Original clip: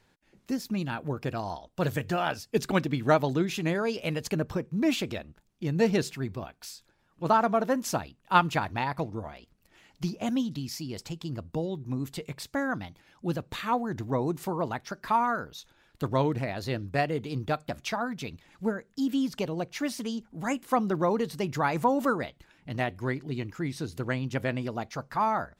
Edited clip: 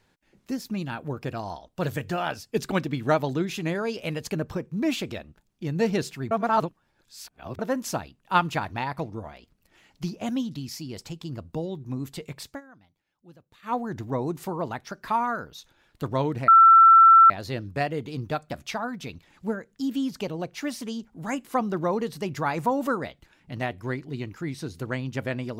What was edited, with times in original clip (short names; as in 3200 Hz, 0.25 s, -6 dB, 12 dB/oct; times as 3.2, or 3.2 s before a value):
6.31–7.59 reverse
12.49–13.74 dip -21 dB, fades 0.12 s
16.48 add tone 1340 Hz -9.5 dBFS 0.82 s